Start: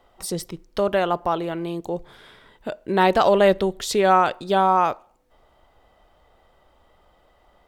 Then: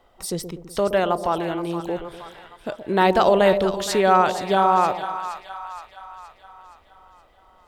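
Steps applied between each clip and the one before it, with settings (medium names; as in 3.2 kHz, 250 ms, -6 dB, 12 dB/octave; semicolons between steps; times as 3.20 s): two-band feedback delay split 830 Hz, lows 123 ms, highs 470 ms, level -9.5 dB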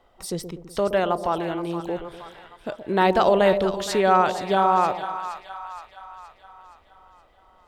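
treble shelf 7.1 kHz -4.5 dB; trim -1.5 dB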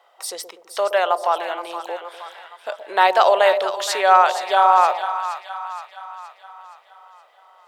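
high-pass 590 Hz 24 dB/octave; trim +6 dB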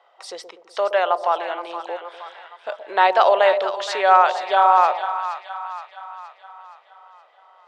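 distance through air 120 m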